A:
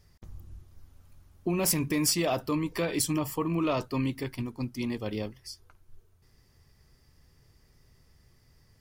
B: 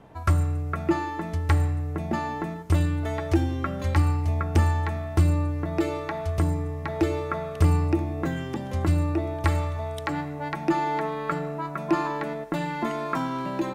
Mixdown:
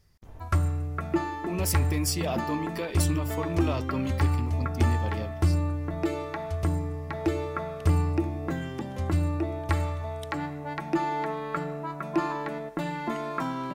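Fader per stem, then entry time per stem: −3.0, −3.0 decibels; 0.00, 0.25 seconds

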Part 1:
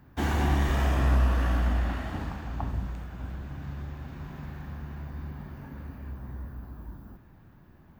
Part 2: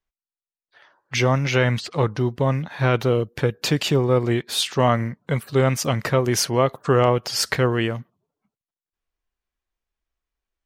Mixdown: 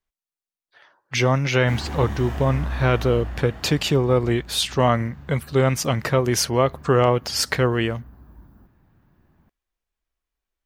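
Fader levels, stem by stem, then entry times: −5.0, 0.0 decibels; 1.50, 0.00 seconds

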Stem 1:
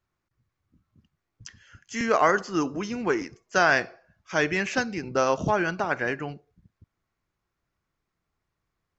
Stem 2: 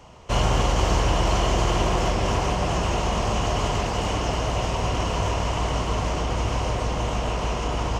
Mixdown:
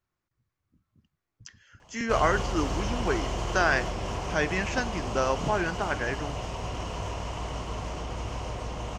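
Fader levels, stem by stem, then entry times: −3.5, −9.5 decibels; 0.00, 1.80 seconds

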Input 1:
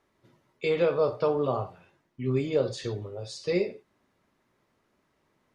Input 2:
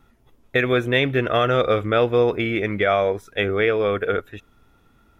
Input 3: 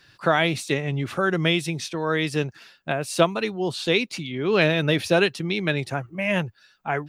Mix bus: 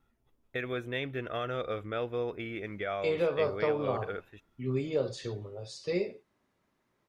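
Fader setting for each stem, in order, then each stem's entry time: −4.5 dB, −15.5 dB, muted; 2.40 s, 0.00 s, muted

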